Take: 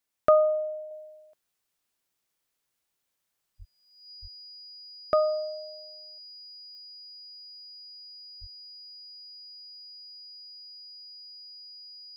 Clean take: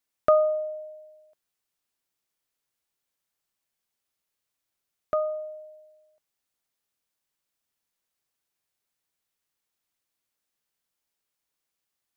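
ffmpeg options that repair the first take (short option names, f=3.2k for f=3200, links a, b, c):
-filter_complex "[0:a]adeclick=t=4,bandreject=f=4.9k:w=30,asplit=3[a][b][c];[a]afade=t=out:st=3.58:d=0.02[d];[b]highpass=f=140:w=0.5412,highpass=f=140:w=1.3066,afade=t=in:st=3.58:d=0.02,afade=t=out:st=3.7:d=0.02[e];[c]afade=t=in:st=3.7:d=0.02[f];[d][e][f]amix=inputs=3:normalize=0,asplit=3[g][h][i];[g]afade=t=out:st=4.21:d=0.02[j];[h]highpass=f=140:w=0.5412,highpass=f=140:w=1.3066,afade=t=in:st=4.21:d=0.02,afade=t=out:st=4.33:d=0.02[k];[i]afade=t=in:st=4.33:d=0.02[l];[j][k][l]amix=inputs=3:normalize=0,asplit=3[m][n][o];[m]afade=t=out:st=8.4:d=0.02[p];[n]highpass=f=140:w=0.5412,highpass=f=140:w=1.3066,afade=t=in:st=8.4:d=0.02,afade=t=out:st=8.52:d=0.02[q];[o]afade=t=in:st=8.52:d=0.02[r];[p][q][r]amix=inputs=3:normalize=0,asetnsamples=n=441:p=0,asendcmd='0.91 volume volume -3dB',volume=0dB"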